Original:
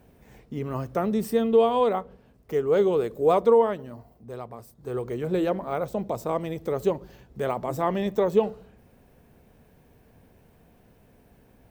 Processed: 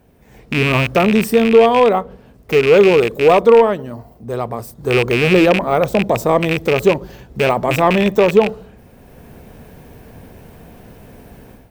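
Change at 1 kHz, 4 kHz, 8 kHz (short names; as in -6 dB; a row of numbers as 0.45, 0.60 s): +11.0 dB, +18.5 dB, n/a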